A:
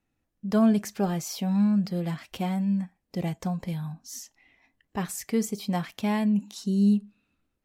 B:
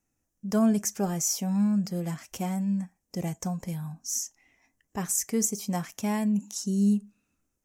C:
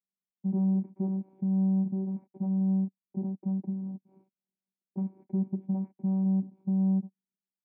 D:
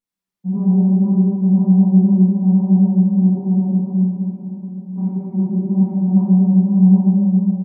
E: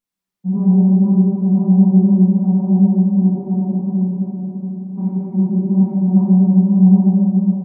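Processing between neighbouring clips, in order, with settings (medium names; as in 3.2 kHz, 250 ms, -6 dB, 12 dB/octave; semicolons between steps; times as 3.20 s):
resonant high shelf 5 kHz +7.5 dB, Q 3; trim -2 dB
waveshaping leveller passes 5; vocoder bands 8, saw 191 Hz; cascade formant filter u
delay 780 ms -16.5 dB; vibrato 3.9 Hz 74 cents; reverberation RT60 3.5 s, pre-delay 4 ms, DRR -11.5 dB
delay 756 ms -10 dB; trim +2 dB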